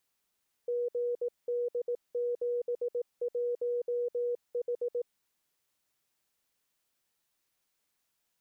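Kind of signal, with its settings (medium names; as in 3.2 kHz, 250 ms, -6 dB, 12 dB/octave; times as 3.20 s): Morse "GD71H" 18 wpm 483 Hz -28.5 dBFS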